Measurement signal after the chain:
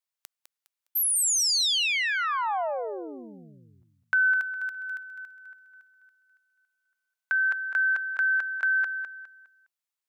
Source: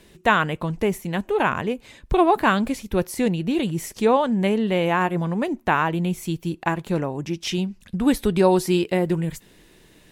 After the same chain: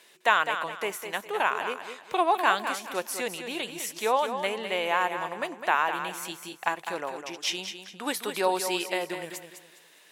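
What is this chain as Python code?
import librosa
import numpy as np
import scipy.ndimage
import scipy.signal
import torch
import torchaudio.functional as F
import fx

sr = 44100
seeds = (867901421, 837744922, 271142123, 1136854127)

p1 = scipy.signal.sosfilt(scipy.signal.butter(2, 750.0, 'highpass', fs=sr, output='sos'), x)
p2 = fx.dynamic_eq(p1, sr, hz=1500.0, q=0.72, threshold_db=-29.0, ratio=4.0, max_db=-3)
y = p2 + fx.echo_feedback(p2, sr, ms=205, feedback_pct=31, wet_db=-8.5, dry=0)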